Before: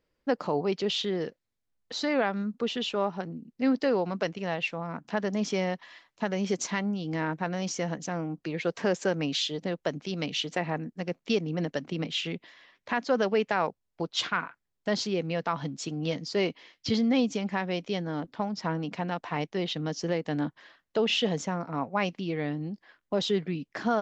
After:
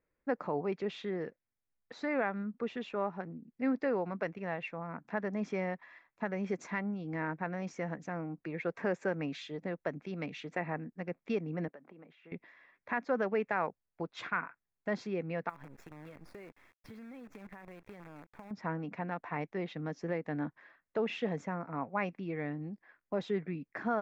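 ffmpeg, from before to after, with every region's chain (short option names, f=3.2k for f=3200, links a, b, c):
-filter_complex "[0:a]asettb=1/sr,asplit=3[a][b][c];[a]atrim=end=11.684[d];[b]atrim=start=11.68:end=12.32,asetpts=PTS-STARTPTS,afade=t=in:d=0.004:c=qsin,afade=t=out:st=0.636:d=0.004:c=qsin,acompressor=threshold=-39dB:ratio=12:attack=3.2:release=140:knee=1:detection=peak,bandpass=f=720:t=q:w=0.63[e];[c]atrim=start=12.316[f];[d][e]acrossfade=d=0.004:c1=hsin:c2=qsin[g];[g][f]acrossfade=d=0.004:c1=qsin:c2=hsin,asettb=1/sr,asplit=3[h][i][j];[h]atrim=end=15.494[k];[i]atrim=start=15.49:end=18.51,asetpts=PTS-STARTPTS,afade=t=in:d=0.004:c=qsin,afade=t=out:st=3.016:d=0.004:c=qsin,acrusher=bits=6:dc=4:mix=0:aa=0.000001,acompressor=threshold=-38dB:ratio=16:attack=3.2:release=140:knee=1:detection=peak[l];[j]atrim=start=18.506[m];[k][l]acrossfade=d=0.004:c1=hsin:c2=qsin[n];[n][m]acrossfade=d=0.004:c1=qsin:c2=hsin,highshelf=f=3k:t=q:w=1.5:g=-12,bandreject=f=3k:w=6.8,volume=-6.5dB"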